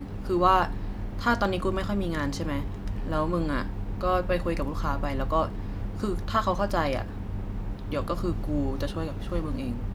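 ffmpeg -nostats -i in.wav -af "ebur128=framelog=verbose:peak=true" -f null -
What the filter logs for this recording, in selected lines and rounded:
Integrated loudness:
  I:         -28.7 LUFS
  Threshold: -38.7 LUFS
Loudness range:
  LRA:         2.8 LU
  Threshold: -49.1 LUFS
  LRA low:   -30.2 LUFS
  LRA high:  -27.4 LUFS
True peak:
  Peak:       -8.2 dBFS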